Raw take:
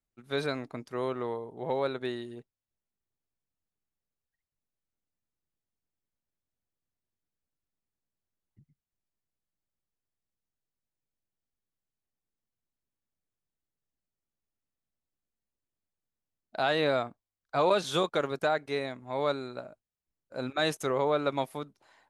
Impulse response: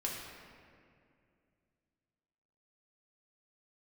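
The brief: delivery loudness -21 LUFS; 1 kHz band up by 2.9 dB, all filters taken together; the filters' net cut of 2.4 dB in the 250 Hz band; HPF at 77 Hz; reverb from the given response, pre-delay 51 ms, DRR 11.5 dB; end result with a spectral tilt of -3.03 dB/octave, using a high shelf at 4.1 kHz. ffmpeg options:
-filter_complex "[0:a]highpass=77,equalizer=f=250:t=o:g=-3.5,equalizer=f=1000:t=o:g=4.5,highshelf=f=4100:g=-7,asplit=2[s0][s1];[1:a]atrim=start_sample=2205,adelay=51[s2];[s1][s2]afir=irnorm=-1:irlink=0,volume=0.2[s3];[s0][s3]amix=inputs=2:normalize=0,volume=2.82"

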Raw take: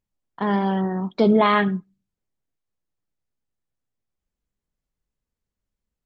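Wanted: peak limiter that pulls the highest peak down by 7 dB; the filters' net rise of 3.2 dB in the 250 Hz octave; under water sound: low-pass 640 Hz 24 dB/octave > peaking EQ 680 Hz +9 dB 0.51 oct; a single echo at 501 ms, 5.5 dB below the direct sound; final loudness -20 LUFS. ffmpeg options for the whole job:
-af "equalizer=f=250:t=o:g=4,alimiter=limit=0.251:level=0:latency=1,lowpass=f=640:w=0.5412,lowpass=f=640:w=1.3066,equalizer=f=680:t=o:w=0.51:g=9,aecho=1:1:501:0.531,volume=1.26"

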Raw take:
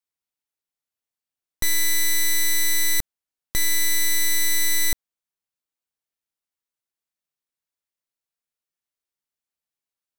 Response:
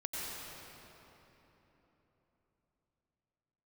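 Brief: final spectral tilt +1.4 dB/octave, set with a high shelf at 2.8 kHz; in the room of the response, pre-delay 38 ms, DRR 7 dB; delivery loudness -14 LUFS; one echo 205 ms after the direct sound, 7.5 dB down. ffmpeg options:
-filter_complex "[0:a]highshelf=f=2800:g=6,aecho=1:1:205:0.422,asplit=2[s0][s1];[1:a]atrim=start_sample=2205,adelay=38[s2];[s1][s2]afir=irnorm=-1:irlink=0,volume=0.316[s3];[s0][s3]amix=inputs=2:normalize=0,volume=1.26"

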